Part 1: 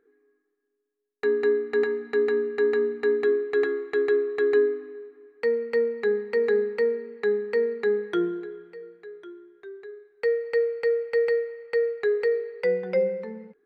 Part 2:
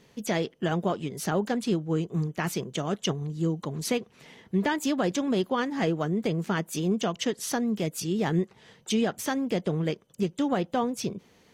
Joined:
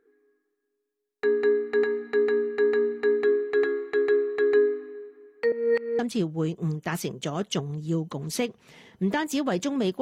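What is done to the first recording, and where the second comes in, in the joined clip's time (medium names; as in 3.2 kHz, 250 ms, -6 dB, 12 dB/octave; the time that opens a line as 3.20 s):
part 1
5.52–5.99 s: reverse
5.99 s: go over to part 2 from 1.51 s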